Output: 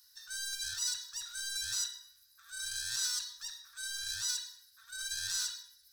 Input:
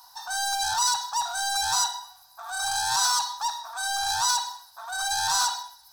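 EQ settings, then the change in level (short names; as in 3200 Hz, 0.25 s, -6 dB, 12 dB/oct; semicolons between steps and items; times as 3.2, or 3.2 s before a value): elliptic band-stop 110–1700 Hz, stop band 40 dB; -8.5 dB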